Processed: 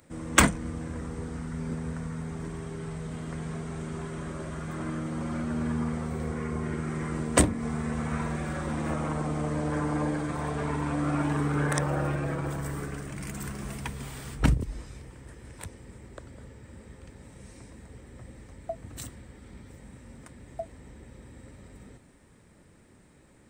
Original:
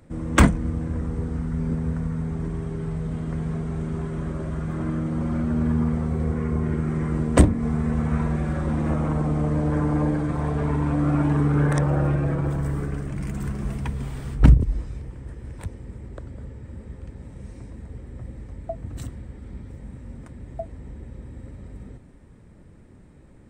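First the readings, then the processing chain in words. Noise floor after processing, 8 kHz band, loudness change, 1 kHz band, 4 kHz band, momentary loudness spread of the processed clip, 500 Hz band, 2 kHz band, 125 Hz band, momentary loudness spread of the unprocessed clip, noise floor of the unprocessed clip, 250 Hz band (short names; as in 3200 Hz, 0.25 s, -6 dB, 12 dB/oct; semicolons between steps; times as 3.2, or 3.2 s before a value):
-57 dBFS, +6.0 dB, -6.5 dB, -1.5 dB, n/a, 22 LU, -4.0 dB, +0.5 dB, -9.0 dB, 20 LU, -48 dBFS, -7.0 dB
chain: tilt +2.5 dB/oct; gain -1.5 dB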